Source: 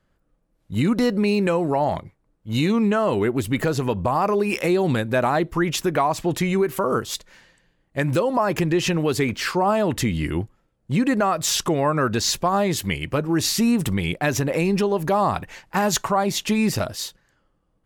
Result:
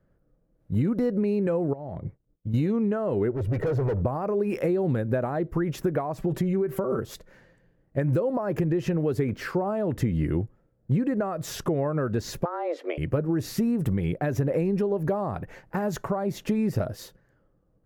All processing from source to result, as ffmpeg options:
-filter_complex "[0:a]asettb=1/sr,asplit=3[s0][s1][s2];[s0]atrim=end=1.734[s3];[s1]atrim=start=1.73:end=2.54,asetpts=PTS-STARTPTS,afade=t=in:d=0.004:c=qsin,afade=t=out:st=0.806:d=0.004:c=qsin,acompressor=threshold=0.0178:ratio=20:attack=3.2:release=140:knee=1:detection=peak,agate=range=0.0224:threshold=0.00126:ratio=3:release=100:detection=peak,lowshelf=f=410:g=6.5[s4];[s2]atrim=start=2.536[s5];[s3][s4]acrossfade=d=0.004:c1=hsin:c2=qsin[s6];[s6][s5]acrossfade=d=0.004:c1=qsin:c2=hsin,asettb=1/sr,asplit=3[s7][s8][s9];[s7]atrim=end=3.314[s10];[s8]atrim=start=3.31:end=4.02,asetpts=PTS-STARTPTS,afade=t=in:d=0.004:c=qsin,afade=t=out:st=0.706:d=0.004:c=qsin,aemphasis=mode=reproduction:type=75kf,aecho=1:1:2.1:0.65,atrim=end_sample=31311,volume=20,asoftclip=hard,volume=0.0501[s11];[s9]atrim=start=4.016[s12];[s10][s11]acrossfade=d=0.004:c1=hsin:c2=qsin[s13];[s13][s12]acrossfade=d=0.004:c1=qsin:c2=hsin,asettb=1/sr,asplit=3[s14][s15][s16];[s14]atrim=end=6.184[s17];[s15]atrim=start=6.18:end=6.99,asetpts=PTS-STARTPTS,afade=t=in:d=0.004:c=qsin,afade=t=out:st=0.806:d=0.004:c=qsin,aecho=1:1:5.2:0.76,atrim=end_sample=35721,acompressor=threshold=0.0708:ratio=2.5:attack=3.2:release=140:knee=1:detection=peak[s18];[s16]atrim=start=6.986[s19];[s17][s18]acrossfade=d=0.004:c1=hsin:c2=qsin[s20];[s20][s19]acrossfade=d=0.004:c1=qsin:c2=hsin,asettb=1/sr,asplit=3[s21][s22][s23];[s21]atrim=end=12.454[s24];[s22]atrim=start=12.45:end=12.98,asetpts=PTS-STARTPTS,afade=t=in:d=0.004:c=qsin,afade=t=out:st=0.526:d=0.004:c=qsin,highpass=290,lowpass=3300,afreqshift=170[s25];[s23]atrim=start=12.976[s26];[s24][s25]acrossfade=d=0.004:c1=hsin:c2=qsin[s27];[s27][s26]acrossfade=d=0.004:c1=qsin:c2=hsin,highshelf=f=2300:t=q:w=1.5:g=-7,acompressor=threshold=0.0631:ratio=6,equalizer=f=125:t=o:w=1:g=5,equalizer=f=500:t=o:w=1:g=5,equalizer=f=1000:t=o:w=1:g=-7,equalizer=f=2000:t=o:w=1:g=-5,equalizer=f=4000:t=o:w=1:g=-4,equalizer=f=8000:t=o:w=1:g=-7"

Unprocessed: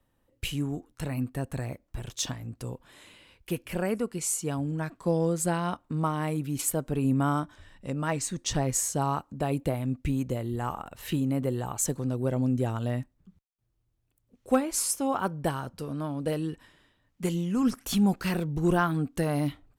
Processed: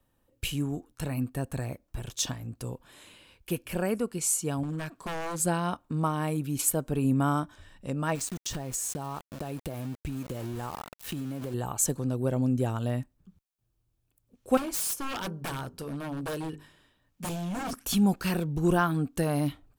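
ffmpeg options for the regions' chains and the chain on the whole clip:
-filter_complex "[0:a]asettb=1/sr,asplit=3[s0][s1][s2];[s0]atrim=end=4.634[s3];[s1]atrim=start=4.63:end=5.4,asetpts=PTS-STARTPTS,afade=t=in:d=0.004:c=qsin,afade=t=out:st=0.766:d=0.004:c=qsin,lowshelf=f=110:g=-6,acompressor=mode=upward:threshold=0.00501:ratio=2.5:attack=3.2:release=140:knee=2.83:detection=peak,aeval=exprs='0.0398*(abs(mod(val(0)/0.0398+3,4)-2)-1)':c=same[s4];[s2]atrim=start=5.396[s5];[s3][s4]acrossfade=d=0.004:c1=hsin:c2=qsin[s6];[s6][s5]acrossfade=d=0.004:c1=qsin:c2=hsin,asettb=1/sr,asplit=3[s7][s8][s9];[s7]atrim=end=8.154[s10];[s8]atrim=start=8.15:end=11.54,asetpts=PTS-STARTPTS,afade=t=in:d=0.004:c=qsin,afade=t=out:st=3.386:d=0.004:c=qsin,aeval=exprs='val(0)*gte(abs(val(0)),0.0141)':c=same,acompressor=threshold=0.0316:ratio=12:attack=3.2:release=140:knee=1:detection=peak[s11];[s9]atrim=start=11.536[s12];[s10][s11]acrossfade=d=0.004:c1=hsin:c2=qsin[s13];[s13][s12]acrossfade=d=0.004:c1=qsin:c2=hsin,asettb=1/sr,asplit=3[s14][s15][s16];[s14]atrim=end=14.574[s17];[s15]atrim=start=14.57:end=17.73,asetpts=PTS-STARTPTS,afade=t=in:d=0.004:c=qsin,afade=t=out:st=3.156:d=0.004:c=qsin,bandreject=f=50:t=h:w=6,bandreject=f=100:t=h:w=6,bandreject=f=150:t=h:w=6,bandreject=f=200:t=h:w=6,bandreject=f=250:t=h:w=6,bandreject=f=300:t=h:w=6,bandreject=f=350:t=h:w=6,bandreject=f=400:t=h:w=6,bandreject=f=450:t=h:w=6,aeval=exprs='0.0376*(abs(mod(val(0)/0.0376+3,4)-2)-1)':c=same[s18];[s16]atrim=start=17.726[s19];[s17][s18]acrossfade=d=0.004:c1=hsin:c2=qsin[s20];[s20][s19]acrossfade=d=0.004:c1=qsin:c2=hsin,highshelf=f=8400:g=5,bandreject=f=2000:w=13"

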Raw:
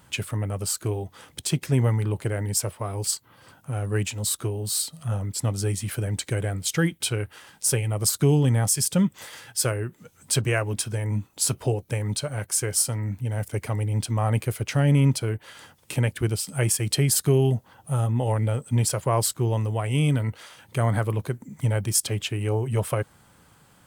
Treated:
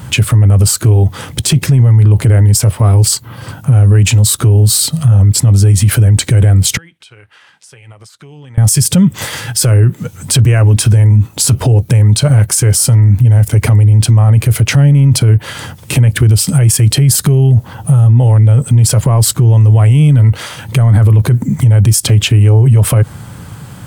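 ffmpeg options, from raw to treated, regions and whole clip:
-filter_complex "[0:a]asettb=1/sr,asplit=3[s0][s1][s2];[s0]atrim=end=6.774[s3];[s1]atrim=start=6.77:end=8.58,asetpts=PTS-STARTPTS,afade=t=in:d=0.004:c=qsin,afade=t=out:st=1.806:d=0.004:c=qsin,lowpass=2100,aderivative,acompressor=threshold=0.00126:ratio=5:attack=3.2:release=140:knee=1:detection=peak[s4];[s2]atrim=start=8.576[s5];[s3][s4]acrossfade=d=0.004:c1=hsin:c2=qsin[s6];[s6][s5]acrossfade=d=0.004:c1=qsin:c2=hsin,equalizer=f=110:t=o:w=1.8:g=13,alimiter=level_in=10.6:limit=0.891:release=50:level=0:latency=1,volume=0.891"

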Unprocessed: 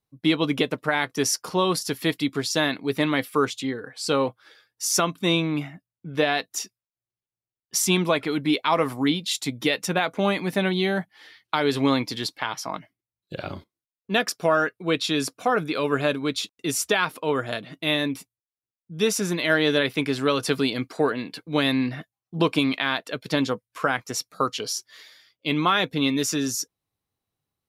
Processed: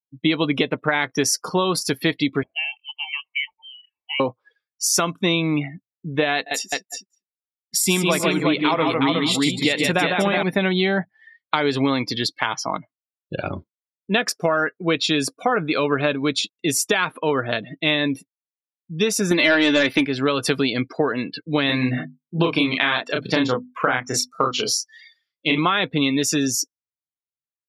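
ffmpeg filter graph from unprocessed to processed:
-filter_complex "[0:a]asettb=1/sr,asplit=3[s0][s1][s2];[s0]atrim=end=2.434[s3];[s1]atrim=start=2.43:end=4.2,asetpts=PTS-STARTPTS,afade=t=in:d=0.004:c=qsin,afade=t=out:st=1.766:d=0.004:c=qsin,asplit=3[s4][s5][s6];[s4]bandpass=f=730:t=q:w=8,volume=1[s7];[s5]bandpass=f=1090:t=q:w=8,volume=0.501[s8];[s6]bandpass=f=2440:t=q:w=8,volume=0.355[s9];[s7][s8][s9]amix=inputs=3:normalize=0,equalizer=f=190:w=2.7:g=5.5,lowpass=f=2900:t=q:w=0.5098,lowpass=f=2900:t=q:w=0.6013,lowpass=f=2900:t=q:w=0.9,lowpass=f=2900:t=q:w=2.563,afreqshift=-3400[s10];[s2]atrim=start=4.196[s11];[s3][s10]acrossfade=d=0.004:c1=hsin:c2=qsin[s12];[s12][s11]acrossfade=d=0.004:c1=qsin:c2=hsin,asettb=1/sr,asplit=3[s13][s14][s15];[s13]atrim=end=6.364[s16];[s14]atrim=start=6.36:end=10.43,asetpts=PTS-STARTPTS,afade=t=in:d=0.004:c=qsin,afade=t=out:st=4.066:d=0.004:c=qsin,bandreject=f=6100:w=5.3,aecho=1:1:103|123|150|363|560:0.126|0.126|0.596|0.631|0.112,atrim=end_sample=179487[s17];[s15]atrim=start=10.426[s18];[s16][s17]acrossfade=d=0.004:c1=hsin:c2=qsin[s19];[s19][s18]acrossfade=d=0.004:c1=qsin:c2=hsin,asettb=1/sr,asplit=3[s20][s21][s22];[s20]atrim=end=19.314[s23];[s21]atrim=start=19.31:end=20.06,asetpts=PTS-STARTPTS,afade=t=in:d=0.004:c=qsin,afade=t=out:st=0.746:d=0.004:c=qsin,aecho=1:1:3.4:0.53,atrim=end_sample=33075,aeval=exprs='0.422*sin(PI/2*1.58*val(0)/0.422)':c=same[s24];[s22]atrim=start=20.056[s25];[s23][s24]acrossfade=d=0.004:c1=hsin:c2=qsin[s26];[s26][s25]acrossfade=d=0.004:c1=qsin:c2=hsin,asettb=1/sr,asplit=3[s27][s28][s29];[s27]atrim=end=21.664[s30];[s28]atrim=start=21.66:end=25.58,asetpts=PTS-STARTPTS,afade=t=in:d=0.004:c=qsin,afade=t=out:st=3.916:d=0.004:c=qsin,bandreject=f=50:t=h:w=6,bandreject=f=100:t=h:w=6,bandreject=f=150:t=h:w=6,bandreject=f=200:t=h:w=6,bandreject=f=250:t=h:w=6,bandreject=f=300:t=h:w=6,asplit=2[s31][s32];[s32]adelay=32,volume=0.75[s33];[s31][s33]amix=inputs=2:normalize=0,atrim=end_sample=172872[s34];[s29]atrim=start=25.576[s35];[s30][s34]acrossfade=d=0.004:c1=hsin:c2=qsin[s36];[s36][s35]acrossfade=d=0.004:c1=qsin:c2=hsin,afftdn=nr=32:nf=-39,acompressor=threshold=0.0794:ratio=6,equalizer=f=2200:t=o:w=0.77:g=3,volume=2"

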